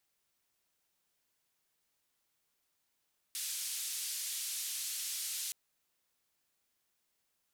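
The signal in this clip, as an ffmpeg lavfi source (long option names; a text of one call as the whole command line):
ffmpeg -f lavfi -i "anoisesrc=color=white:duration=2.17:sample_rate=44100:seed=1,highpass=frequency=3400,lowpass=frequency=12000,volume=-30dB" out.wav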